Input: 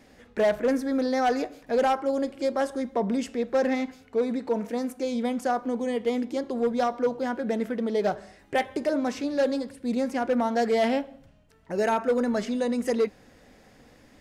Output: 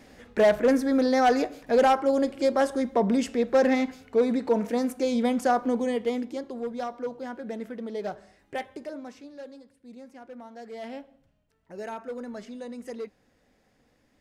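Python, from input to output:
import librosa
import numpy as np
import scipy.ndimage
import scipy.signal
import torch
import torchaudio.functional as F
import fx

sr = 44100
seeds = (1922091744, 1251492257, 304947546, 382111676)

y = fx.gain(x, sr, db=fx.line((5.72, 3.0), (6.63, -7.5), (8.56, -7.5), (9.5, -19.0), (10.59, -19.0), (11.02, -12.0)))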